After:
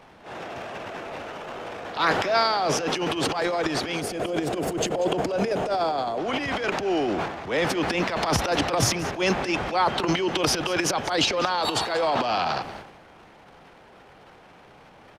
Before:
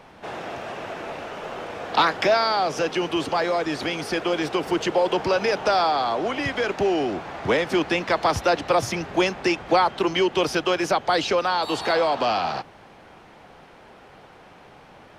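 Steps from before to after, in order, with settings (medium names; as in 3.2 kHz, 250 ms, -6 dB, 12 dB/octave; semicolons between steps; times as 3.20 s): time-frequency box 4.01–6.18 s, 760–6300 Hz -8 dB; transient shaper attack -11 dB, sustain +12 dB; on a send: delay 189 ms -17 dB; on the sum: trim -2.5 dB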